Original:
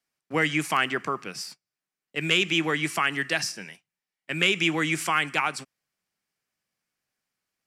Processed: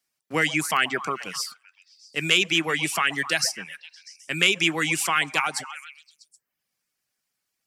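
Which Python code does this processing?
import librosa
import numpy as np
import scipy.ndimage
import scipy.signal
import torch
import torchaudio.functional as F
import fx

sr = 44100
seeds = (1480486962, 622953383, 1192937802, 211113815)

y = fx.high_shelf(x, sr, hz=3400.0, db=8.5)
y = fx.echo_stepped(y, sr, ms=129, hz=700.0, octaves=0.7, feedback_pct=70, wet_db=-8)
y = fx.dereverb_blind(y, sr, rt60_s=0.56)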